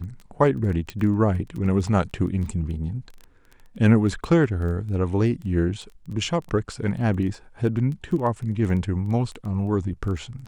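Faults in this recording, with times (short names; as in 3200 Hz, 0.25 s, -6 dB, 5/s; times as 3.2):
crackle 10/s -31 dBFS
0.9 pop -18 dBFS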